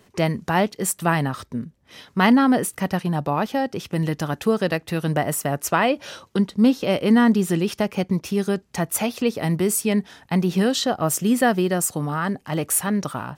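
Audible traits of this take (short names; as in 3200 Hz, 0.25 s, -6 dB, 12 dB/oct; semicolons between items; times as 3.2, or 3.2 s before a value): noise floor -58 dBFS; spectral tilt -5.0 dB/oct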